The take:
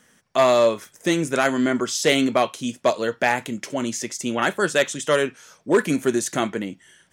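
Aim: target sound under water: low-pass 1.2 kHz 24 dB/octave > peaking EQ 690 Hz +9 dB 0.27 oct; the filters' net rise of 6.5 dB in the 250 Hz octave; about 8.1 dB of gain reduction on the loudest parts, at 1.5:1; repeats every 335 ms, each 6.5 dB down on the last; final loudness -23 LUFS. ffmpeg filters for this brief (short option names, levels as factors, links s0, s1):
-af "equalizer=f=250:t=o:g=7.5,acompressor=threshold=0.02:ratio=1.5,lowpass=f=1200:w=0.5412,lowpass=f=1200:w=1.3066,equalizer=f=690:t=o:w=0.27:g=9,aecho=1:1:335|670|1005|1340|1675|2010:0.473|0.222|0.105|0.0491|0.0231|0.0109,volume=1.19"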